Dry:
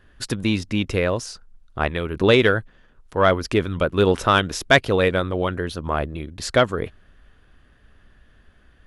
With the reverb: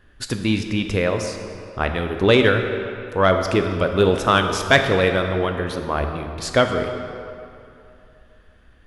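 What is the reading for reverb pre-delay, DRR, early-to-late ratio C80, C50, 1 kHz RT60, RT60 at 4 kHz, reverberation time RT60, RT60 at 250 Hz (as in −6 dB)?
11 ms, 5.0 dB, 7.0 dB, 6.0 dB, 2.7 s, 1.8 s, 2.7 s, 2.6 s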